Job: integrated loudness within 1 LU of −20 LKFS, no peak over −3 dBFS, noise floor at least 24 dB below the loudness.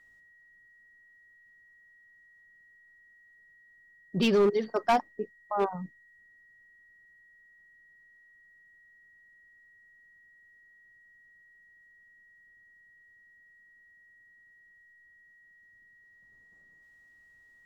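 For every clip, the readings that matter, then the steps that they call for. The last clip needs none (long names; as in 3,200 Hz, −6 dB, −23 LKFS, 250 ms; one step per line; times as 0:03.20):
share of clipped samples 0.2%; peaks flattened at −18.5 dBFS; interfering tone 1,900 Hz; level of the tone −57 dBFS; integrated loudness −28.5 LKFS; sample peak −18.5 dBFS; target loudness −20.0 LKFS
→ clipped peaks rebuilt −18.5 dBFS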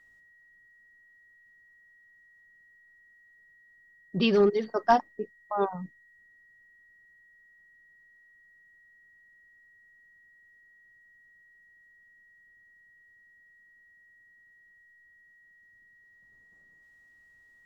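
share of clipped samples 0.0%; interfering tone 1,900 Hz; level of the tone −57 dBFS
→ notch filter 1,900 Hz, Q 30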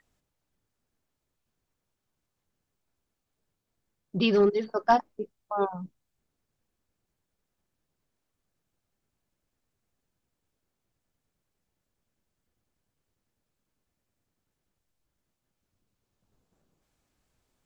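interfering tone none found; integrated loudness −26.0 LKFS; sample peak −9.5 dBFS; target loudness −20.0 LKFS
→ level +6 dB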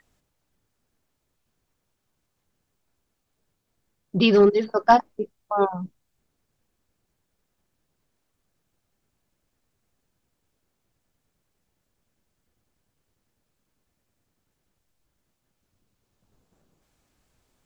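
integrated loudness −20.0 LKFS; sample peak −3.5 dBFS; background noise floor −77 dBFS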